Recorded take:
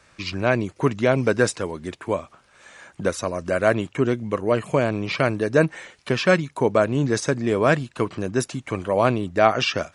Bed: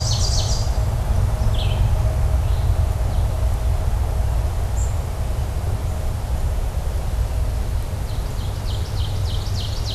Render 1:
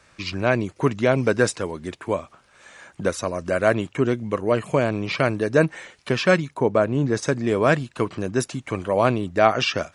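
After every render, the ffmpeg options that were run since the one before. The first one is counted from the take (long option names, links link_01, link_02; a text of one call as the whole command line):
ffmpeg -i in.wav -filter_complex "[0:a]asettb=1/sr,asplit=3[link_01][link_02][link_03];[link_01]atrim=end=6.544[link_04];[link_02]atrim=start=6.54:end=7.23,asetpts=PTS-STARTPTS,afade=type=in:duration=0.004:curve=qsin,afade=type=out:start_time=0.686:duration=0.004:curve=qsin,highshelf=frequency=2300:gain=-7.5[link_05];[link_03]atrim=start=7.226[link_06];[link_04][link_05]acrossfade=duration=0.004:curve1=hsin:curve2=qsin[link_07];[link_07][link_06]acrossfade=duration=0.004:curve1=qsin:curve2=hsin" out.wav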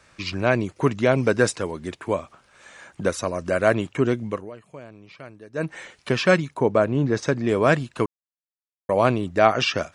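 ffmpeg -i in.wav -filter_complex "[0:a]asettb=1/sr,asplit=3[link_01][link_02][link_03];[link_01]atrim=end=6.914[link_04];[link_02]atrim=start=6.91:end=7.49,asetpts=PTS-STARTPTS,afade=type=in:duration=0.004:curve=qsin,afade=type=out:start_time=0.576:duration=0.004:curve=qsin,lowpass=5600[link_05];[link_03]atrim=start=7.486[link_06];[link_04][link_05]acrossfade=duration=0.004:curve1=hsin:curve2=qsin[link_07];[link_07][link_06]acrossfade=duration=0.004:curve1=qsin:curve2=hsin,asplit=5[link_08][link_09][link_10][link_11][link_12];[link_08]atrim=end=4.51,asetpts=PTS-STARTPTS,afade=type=out:start_time=4.24:duration=0.27:silence=0.0944061[link_13];[link_09]atrim=start=4.51:end=5.53,asetpts=PTS-STARTPTS,volume=-20.5dB[link_14];[link_10]atrim=start=5.53:end=8.06,asetpts=PTS-STARTPTS,afade=type=in:duration=0.27:silence=0.0944061,afade=type=out:start_time=2.526:duration=0.004:curve=hsin[link_15];[link_11]atrim=start=8.06:end=8.89,asetpts=PTS-STARTPTS,volume=0[link_16];[link_12]atrim=start=8.89,asetpts=PTS-STARTPTS,afade=type=in:duration=0.004:curve=hsin[link_17];[link_13][link_14][link_15][link_16][link_17]concat=n=5:v=0:a=1" out.wav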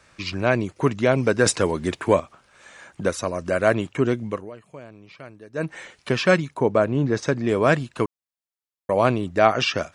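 ffmpeg -i in.wav -filter_complex "[0:a]asettb=1/sr,asplit=3[link_01][link_02][link_03];[link_01]atrim=end=1.464[link_04];[link_02]atrim=start=1.46:end=2.2,asetpts=PTS-STARTPTS,afade=type=in:duration=0.004:curve=qsin,afade=type=out:start_time=0.736:duration=0.004:curve=qsin,acontrast=76[link_05];[link_03]atrim=start=2.196[link_06];[link_04][link_05]acrossfade=duration=0.004:curve1=hsin:curve2=qsin[link_07];[link_07][link_06]acrossfade=duration=0.004:curve1=qsin:curve2=hsin" out.wav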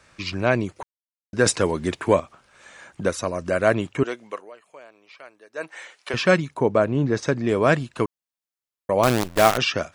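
ffmpeg -i in.wav -filter_complex "[0:a]asettb=1/sr,asplit=3[link_01][link_02][link_03];[link_01]atrim=end=4.034[link_04];[link_02]atrim=start=4.03:end=6.14,asetpts=PTS-STARTPTS,afade=type=in:duration=0.004:curve=qsin,afade=type=out:start_time=2.106:duration=0.004:curve=qsin,highpass=580[link_05];[link_03]atrim=start=6.136[link_06];[link_04][link_05]acrossfade=duration=0.004:curve1=hsin:curve2=qsin[link_07];[link_07][link_06]acrossfade=duration=0.004:curve1=qsin:curve2=hsin,asettb=1/sr,asplit=3[link_08][link_09][link_10];[link_08]atrim=end=9.034[link_11];[link_09]atrim=start=9.03:end=9.58,asetpts=PTS-STARTPTS,afade=type=in:duration=0.004:curve=qsin,afade=type=out:start_time=0.546:duration=0.004:curve=qsin,acrusher=bits=4:dc=4:mix=0:aa=0.000001[link_12];[link_10]atrim=start=9.576[link_13];[link_11][link_12]acrossfade=duration=0.004:curve1=hsin:curve2=qsin[link_14];[link_14][link_13]acrossfade=duration=0.004:curve1=qsin:curve2=hsin,asplit=3[link_15][link_16][link_17];[link_15]atrim=end=0.83,asetpts=PTS-STARTPTS,afade=type=out:start_time=0.826:duration=0.004:curve=hsin[link_18];[link_16]atrim=start=0.83:end=1.33,asetpts=PTS-STARTPTS,volume=0[link_19];[link_17]atrim=start=1.33,asetpts=PTS-STARTPTS,afade=type=in:duration=0.004:curve=hsin[link_20];[link_18][link_19][link_20]concat=n=3:v=0:a=1" out.wav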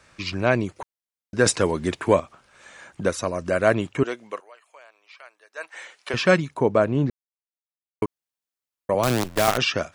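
ffmpeg -i in.wav -filter_complex "[0:a]asettb=1/sr,asplit=3[link_01][link_02][link_03];[link_01]atrim=end=4.404[link_04];[link_02]atrim=start=4.4:end=5.74,asetpts=PTS-STARTPTS,afade=type=in:duration=0.004:curve=qsin,afade=type=out:start_time=1.336:duration=0.004:curve=qsin,highpass=780[link_05];[link_03]atrim=start=5.736[link_06];[link_04][link_05]acrossfade=duration=0.004:curve1=hsin:curve2=qsin[link_07];[link_07][link_06]acrossfade=duration=0.004:curve1=qsin:curve2=hsin,asettb=1/sr,asplit=3[link_08][link_09][link_10];[link_08]atrim=end=8.944[link_11];[link_09]atrim=start=8.94:end=9.48,asetpts=PTS-STARTPTS,afade=type=in:duration=0.004:curve=qsin,afade=type=out:start_time=0.536:duration=0.004:curve=qsin,acrossover=split=170|3000[link_12][link_13][link_14];[link_13]acompressor=threshold=-16dB:ratio=6:attack=3.2:release=140:knee=2.83:detection=peak[link_15];[link_12][link_15][link_14]amix=inputs=3:normalize=0[link_16];[link_10]atrim=start=9.476[link_17];[link_11][link_16]acrossfade=duration=0.004:curve1=hsin:curve2=qsin[link_18];[link_18][link_17]acrossfade=duration=0.004:curve1=qsin:curve2=hsin,asplit=3[link_19][link_20][link_21];[link_19]atrim=end=7.1,asetpts=PTS-STARTPTS,afade=type=out:start_time=7.096:duration=0.004:curve=hsin[link_22];[link_20]atrim=start=7.1:end=8.02,asetpts=PTS-STARTPTS,volume=0[link_23];[link_21]atrim=start=8.02,asetpts=PTS-STARTPTS,afade=type=in:duration=0.004:curve=hsin[link_24];[link_22][link_23][link_24]concat=n=3:v=0:a=1" out.wav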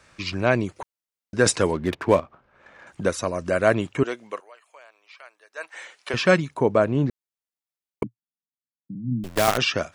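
ffmpeg -i in.wav -filter_complex "[0:a]asettb=1/sr,asplit=3[link_01][link_02][link_03];[link_01]atrim=end=1.734[link_04];[link_02]atrim=start=1.73:end=2.87,asetpts=PTS-STARTPTS,afade=type=in:duration=0.004:curve=qsin,afade=type=out:start_time=1.136:duration=0.004:curve=qsin,adynamicsmooth=sensitivity=5.5:basefreq=1500[link_05];[link_03]atrim=start=2.866[link_06];[link_04][link_05]acrossfade=duration=0.004:curve1=hsin:curve2=qsin[link_07];[link_07][link_06]acrossfade=duration=0.004:curve1=qsin:curve2=hsin,asettb=1/sr,asplit=3[link_08][link_09][link_10];[link_08]atrim=end=8.034[link_11];[link_09]atrim=start=8.03:end=9.24,asetpts=PTS-STARTPTS,afade=type=in:duration=0.004:curve=qsin,afade=type=out:start_time=1.206:duration=0.004:curve=qsin,asuperpass=centerf=180:order=12:qfactor=1.1[link_12];[link_10]atrim=start=9.236[link_13];[link_11][link_12]acrossfade=duration=0.004:curve1=hsin:curve2=qsin[link_14];[link_14][link_13]acrossfade=duration=0.004:curve1=qsin:curve2=hsin" out.wav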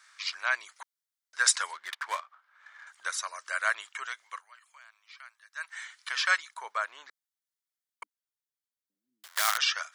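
ffmpeg -i in.wav -af "highpass=frequency=1200:width=0.5412,highpass=frequency=1200:width=1.3066,equalizer=frequency=2600:width=5.3:gain=-9.5" out.wav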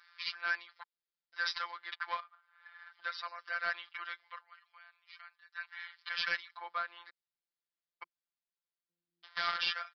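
ffmpeg -i in.wav -af "aresample=11025,asoftclip=type=tanh:threshold=-22dB,aresample=44100,afftfilt=real='hypot(re,im)*cos(PI*b)':imag='0':win_size=1024:overlap=0.75" out.wav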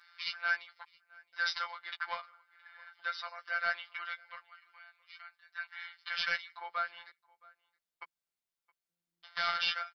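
ffmpeg -i in.wav -filter_complex "[0:a]asplit=2[link_01][link_02];[link_02]adelay=13,volume=-4.5dB[link_03];[link_01][link_03]amix=inputs=2:normalize=0,asplit=2[link_04][link_05];[link_05]adelay=668,lowpass=frequency=2900:poles=1,volume=-24dB[link_06];[link_04][link_06]amix=inputs=2:normalize=0" out.wav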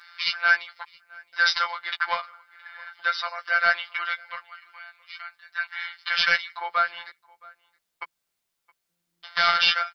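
ffmpeg -i in.wav -af "volume=12dB" out.wav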